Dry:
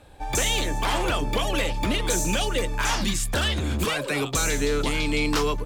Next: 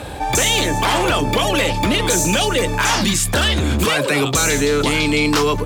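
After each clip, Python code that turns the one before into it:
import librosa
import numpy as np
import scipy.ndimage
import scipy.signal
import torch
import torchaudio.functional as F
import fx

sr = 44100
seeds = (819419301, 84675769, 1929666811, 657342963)

y = scipy.signal.sosfilt(scipy.signal.butter(2, 64.0, 'highpass', fs=sr, output='sos'), x)
y = fx.env_flatten(y, sr, amount_pct=50)
y = F.gain(torch.from_numpy(y), 7.0).numpy()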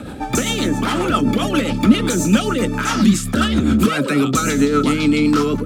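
y = fx.rotary(x, sr, hz=7.5)
y = fx.small_body(y, sr, hz=(230.0, 1300.0), ring_ms=35, db=16)
y = F.gain(torch.from_numpy(y), -4.0).numpy()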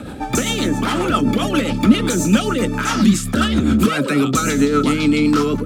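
y = x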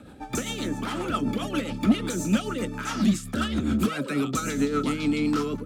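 y = 10.0 ** (-4.5 / 20.0) * np.tanh(x / 10.0 ** (-4.5 / 20.0))
y = fx.upward_expand(y, sr, threshold_db=-29.0, expansion=1.5)
y = F.gain(torch.from_numpy(y), -5.5).numpy()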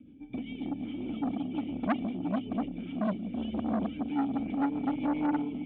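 y = fx.formant_cascade(x, sr, vowel='i')
y = fx.echo_multitap(y, sr, ms=(174, 467, 684), db=(-11.0, -11.5, -7.0))
y = fx.transformer_sat(y, sr, knee_hz=970.0)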